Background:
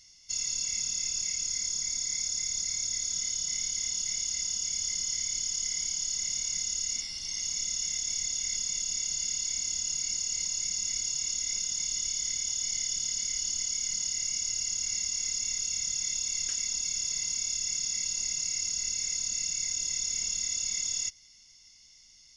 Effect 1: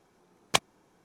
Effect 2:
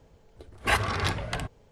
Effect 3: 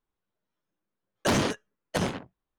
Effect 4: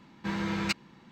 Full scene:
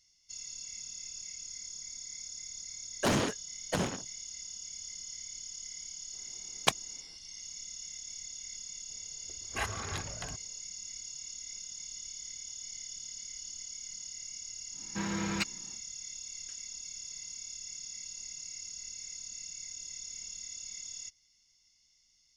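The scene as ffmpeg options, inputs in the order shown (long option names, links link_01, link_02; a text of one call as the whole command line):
ffmpeg -i bed.wav -i cue0.wav -i cue1.wav -i cue2.wav -i cue3.wav -filter_complex "[0:a]volume=-12dB[link_01];[3:a]atrim=end=2.58,asetpts=PTS-STARTPTS,volume=-4dB,afade=type=in:duration=0.004:curve=hsin,afade=type=out:start_time=2.576:duration=0.004:curve=hsin,adelay=1780[link_02];[1:a]atrim=end=1.04,asetpts=PTS-STARTPTS,volume=-2.5dB,afade=type=in:duration=0.004:curve=hsin,afade=type=out:start_time=1.036:duration=0.004:curve=hsin,adelay=6130[link_03];[2:a]atrim=end=1.71,asetpts=PTS-STARTPTS,volume=-11dB,afade=type=in:duration=0.004:curve=hsin,afade=type=out:start_time=1.706:duration=0.004:curve=hsin,adelay=8890[link_04];[4:a]atrim=end=1.11,asetpts=PTS-STARTPTS,volume=-3dB,afade=type=in:duration=0.1,afade=type=out:start_time=1.01:duration=0.1,adelay=14710[link_05];[link_01][link_02][link_03][link_04][link_05]amix=inputs=5:normalize=0" out.wav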